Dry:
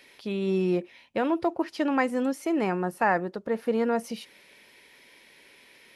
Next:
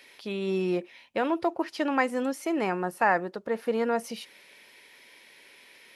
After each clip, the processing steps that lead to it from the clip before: low shelf 310 Hz -8 dB; gain +1.5 dB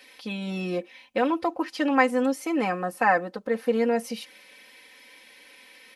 comb 3.9 ms, depth 86%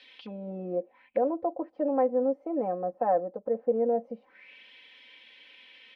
envelope low-pass 610–3900 Hz down, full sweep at -29 dBFS; gain -8.5 dB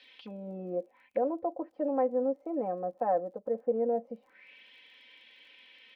crackle 30/s -56 dBFS; gain -3 dB

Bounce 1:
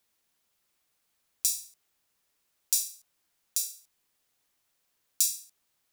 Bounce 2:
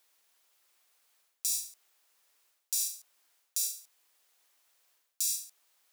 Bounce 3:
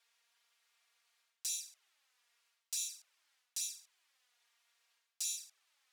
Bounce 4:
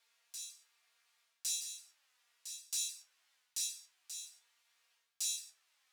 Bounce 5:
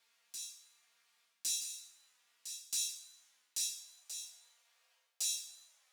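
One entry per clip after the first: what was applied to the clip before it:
HPF 480 Hz 12 dB/oct; reverse; compressor 10:1, threshold -33 dBFS, peak gain reduction 15 dB; reverse; gain +5.5 dB
band-pass 2300 Hz, Q 0.61; envelope flanger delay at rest 4.4 ms, full sweep at -35 dBFS; gain +3 dB
resonator 74 Hz, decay 0.2 s, harmonics all, mix 90%; on a send: reverse echo 1.109 s -9 dB; on the sum: gain +7 dB
Schroeder reverb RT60 0.94 s, combs from 33 ms, DRR 11.5 dB; high-pass sweep 180 Hz -> 550 Hz, 3.25–3.86; gain +1 dB

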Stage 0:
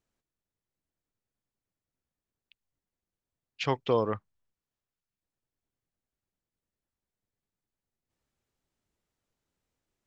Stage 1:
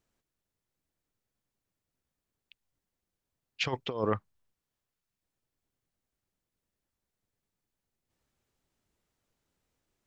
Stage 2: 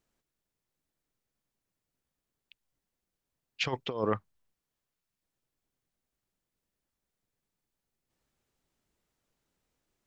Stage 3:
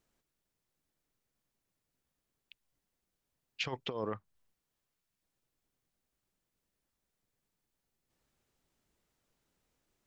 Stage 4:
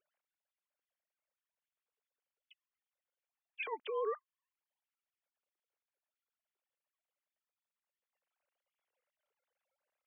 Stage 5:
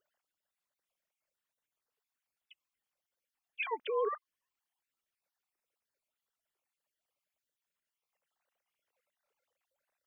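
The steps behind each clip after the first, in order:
negative-ratio compressor -29 dBFS, ratio -0.5
bell 88 Hz -7.5 dB 0.34 oct
compressor 4:1, threshold -35 dBFS, peak gain reduction 11 dB; gain +1 dB
sine-wave speech
random spectral dropouts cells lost 26%; gain +4.5 dB

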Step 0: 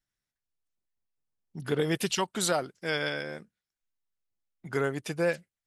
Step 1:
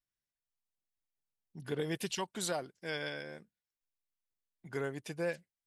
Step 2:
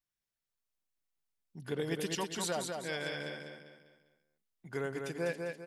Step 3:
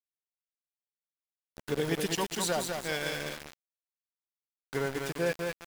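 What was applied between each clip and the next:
notch 1300 Hz, Q 8.2; gain -8 dB
feedback echo 0.199 s, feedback 40%, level -4.5 dB
sample gate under -39.5 dBFS; gain +5 dB

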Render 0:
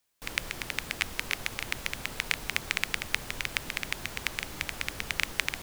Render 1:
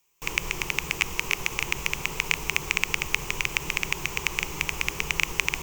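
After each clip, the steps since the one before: ripple EQ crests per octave 0.74, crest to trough 11 dB; in parallel at +0.5 dB: limiter -11.5 dBFS, peak gain reduction 8.5 dB; on the sum: gain -1.5 dB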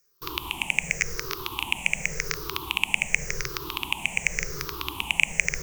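moving spectral ripple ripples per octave 0.56, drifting -0.89 Hz, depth 21 dB; gain -5 dB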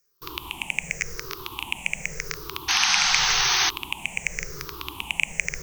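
painted sound noise, 2.68–3.7, 710–6500 Hz -19 dBFS; gain -2.5 dB

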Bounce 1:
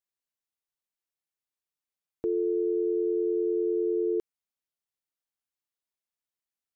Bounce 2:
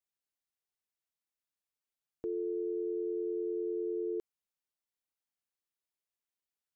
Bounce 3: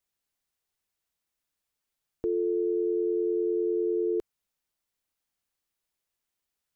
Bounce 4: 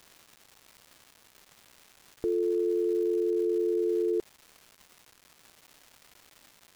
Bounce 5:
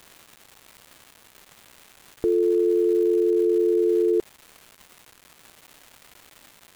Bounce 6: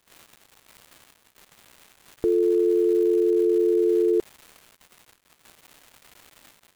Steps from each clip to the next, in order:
limiter -26 dBFS, peak gain reduction 5 dB; gain -3 dB
low shelf 83 Hz +8 dB; gain +7.5 dB
crackle 500/s -42 dBFS
bell 5300 Hz -3.5 dB 0.68 oct; gain +7 dB
gate -52 dBFS, range -16 dB

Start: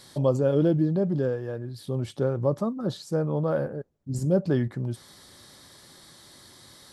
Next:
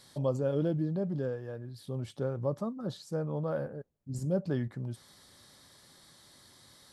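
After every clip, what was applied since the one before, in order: bell 350 Hz -3.5 dB 0.4 oct; gain -7 dB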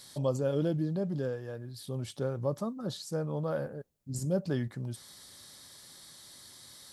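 high shelf 3100 Hz +9.5 dB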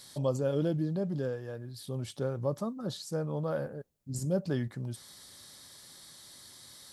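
nothing audible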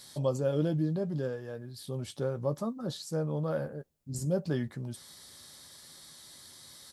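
doubler 13 ms -11 dB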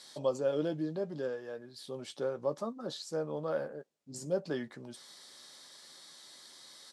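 BPF 310–7300 Hz

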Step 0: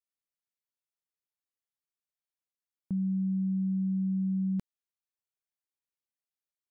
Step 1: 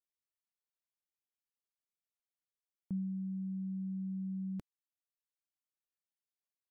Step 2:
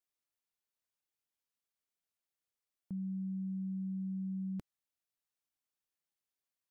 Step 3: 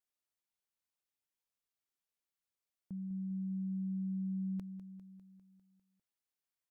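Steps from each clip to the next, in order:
reverb removal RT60 0.99 s; gain -5.5 dB
limiter -36.5 dBFS, peak gain reduction 5 dB; gain +1.5 dB
feedback echo 0.2 s, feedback 60%, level -12 dB; gain -3 dB

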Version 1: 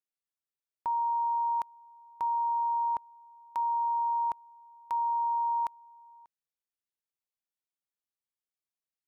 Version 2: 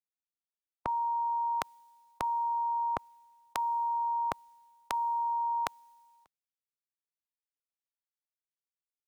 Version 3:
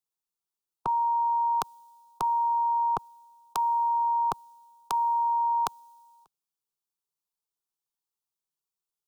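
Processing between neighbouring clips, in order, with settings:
spectral limiter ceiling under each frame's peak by 24 dB; three-band expander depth 40%
fixed phaser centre 390 Hz, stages 8; gain +5.5 dB

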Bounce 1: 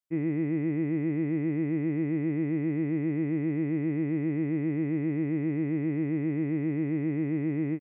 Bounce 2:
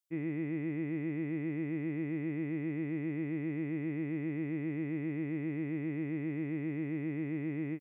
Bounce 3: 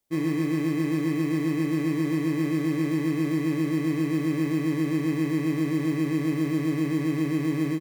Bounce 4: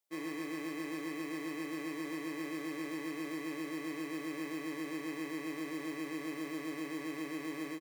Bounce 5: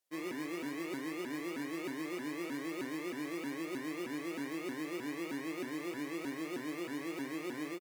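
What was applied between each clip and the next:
high shelf 2300 Hz +11.5 dB; gain -7.5 dB
notches 50/100/150 Hz; in parallel at -7 dB: sample-and-hold 31×; on the sum: doubler 44 ms -7.5 dB; gain +7 dB
HPF 480 Hz 12 dB/oct; gain -6.5 dB
shaped vibrato saw up 3.2 Hz, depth 250 cents

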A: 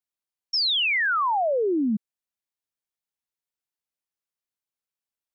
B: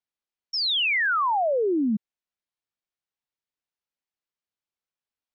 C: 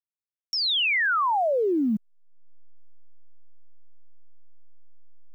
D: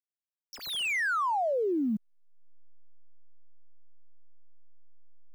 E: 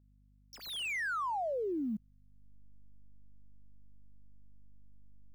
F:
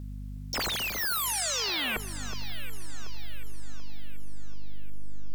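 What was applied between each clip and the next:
LPF 5000 Hz
level-crossing sampler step -53.5 dBFS; upward compressor, threshold -27 dBFS
median filter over 9 samples; gain -5 dB
hum 50 Hz, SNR 24 dB; gain -6.5 dB
sine folder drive 19 dB, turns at -30.5 dBFS; echo with dull and thin repeats by turns 0.367 s, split 1600 Hz, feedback 69%, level -9 dB; gain +4 dB

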